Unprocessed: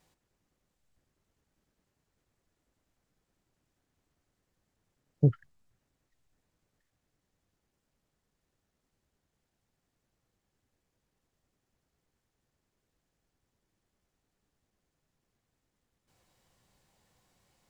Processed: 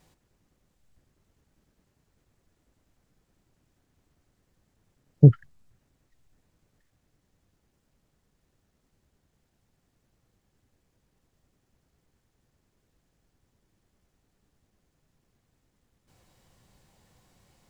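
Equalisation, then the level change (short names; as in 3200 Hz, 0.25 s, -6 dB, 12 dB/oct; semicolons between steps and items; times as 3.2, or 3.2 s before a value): low shelf 320 Hz +5.5 dB; +5.5 dB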